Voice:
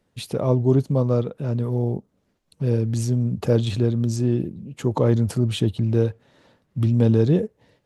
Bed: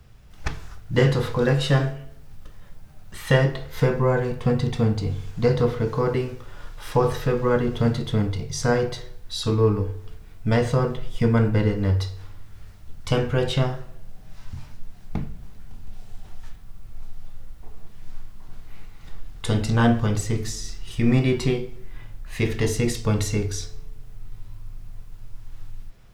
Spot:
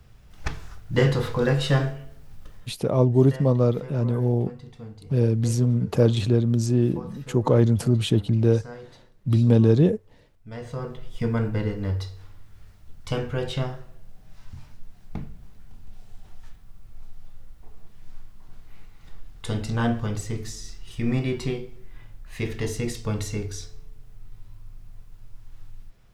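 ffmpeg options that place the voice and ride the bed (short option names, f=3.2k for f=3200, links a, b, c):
-filter_complex "[0:a]adelay=2500,volume=0.5dB[a];[1:a]volume=12.5dB,afade=t=out:st=2.55:d=0.24:silence=0.125893,afade=t=in:st=10.5:d=0.69:silence=0.199526[b];[a][b]amix=inputs=2:normalize=0"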